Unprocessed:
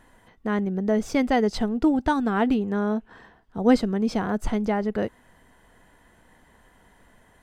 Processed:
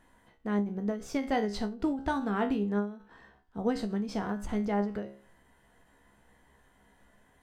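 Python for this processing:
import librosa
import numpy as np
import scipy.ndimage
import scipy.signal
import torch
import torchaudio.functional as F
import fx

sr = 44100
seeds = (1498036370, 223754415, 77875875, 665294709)

y = fx.comb_fb(x, sr, f0_hz=68.0, decay_s=0.34, harmonics='all', damping=0.0, mix_pct=80)
y = fx.end_taper(y, sr, db_per_s=120.0)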